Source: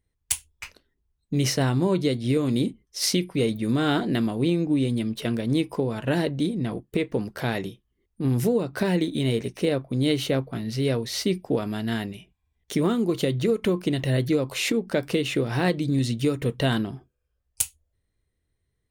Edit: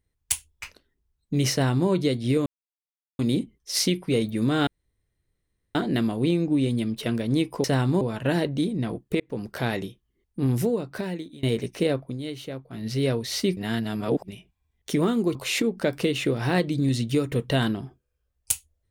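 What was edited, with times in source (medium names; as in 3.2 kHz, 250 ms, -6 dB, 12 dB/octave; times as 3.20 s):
1.52–1.89 s: copy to 5.83 s
2.46 s: insert silence 0.73 s
3.94 s: insert room tone 1.08 s
7.02–7.30 s: fade in
8.31–9.25 s: fade out, to -23.5 dB
9.83–10.69 s: dip -11 dB, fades 0.17 s
11.39–12.10 s: reverse
13.17–14.45 s: delete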